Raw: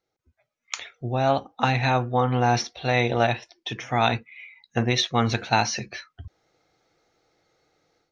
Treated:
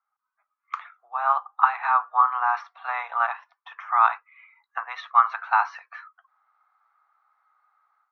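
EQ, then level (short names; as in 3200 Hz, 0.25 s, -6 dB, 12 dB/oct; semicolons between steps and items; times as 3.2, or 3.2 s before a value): steep high-pass 890 Hz 36 dB/oct; synth low-pass 1200 Hz, resonance Q 5.6; -1.0 dB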